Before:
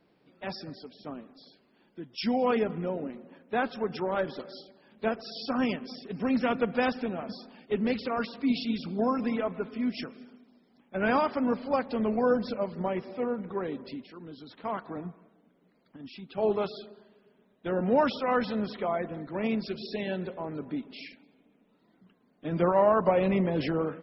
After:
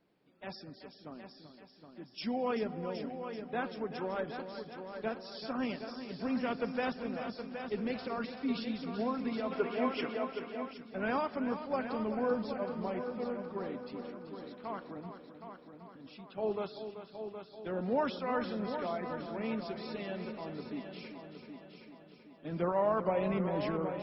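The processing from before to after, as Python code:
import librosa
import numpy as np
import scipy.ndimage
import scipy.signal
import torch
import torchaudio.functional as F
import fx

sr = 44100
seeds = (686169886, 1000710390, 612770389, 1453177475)

y = fx.echo_heads(x, sr, ms=384, heads='first and second', feedback_pct=52, wet_db=-10.5)
y = fx.spec_box(y, sr, start_s=9.52, length_s=1.21, low_hz=290.0, high_hz=3400.0, gain_db=9)
y = F.gain(torch.from_numpy(y), -7.5).numpy()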